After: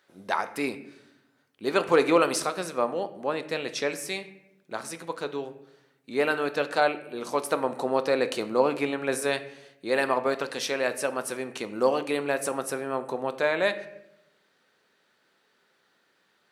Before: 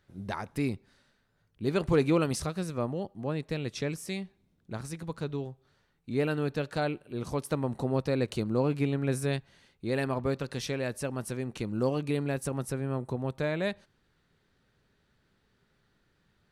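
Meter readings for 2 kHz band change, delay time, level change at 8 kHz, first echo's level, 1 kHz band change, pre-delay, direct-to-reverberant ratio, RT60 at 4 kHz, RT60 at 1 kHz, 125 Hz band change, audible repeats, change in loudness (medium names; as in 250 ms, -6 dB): +9.0 dB, no echo, +7.0 dB, no echo, +10.0 dB, 3 ms, 10.0 dB, 0.55 s, 0.70 s, -13.0 dB, no echo, +4.0 dB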